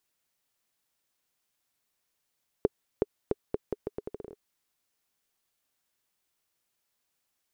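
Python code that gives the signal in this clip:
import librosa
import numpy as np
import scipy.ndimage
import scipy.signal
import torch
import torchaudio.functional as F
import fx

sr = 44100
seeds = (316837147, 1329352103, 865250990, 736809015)

y = fx.bouncing_ball(sr, first_gap_s=0.37, ratio=0.79, hz=416.0, decay_ms=30.0, level_db=-10.0)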